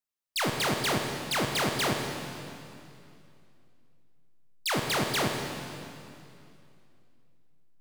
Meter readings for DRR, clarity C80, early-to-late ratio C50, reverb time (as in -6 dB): 2.5 dB, 4.0 dB, 3.0 dB, 2.6 s